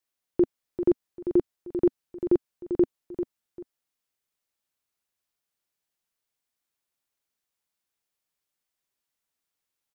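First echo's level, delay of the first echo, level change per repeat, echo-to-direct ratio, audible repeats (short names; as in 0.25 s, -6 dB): -9.0 dB, 0.394 s, -11.5 dB, -8.5 dB, 2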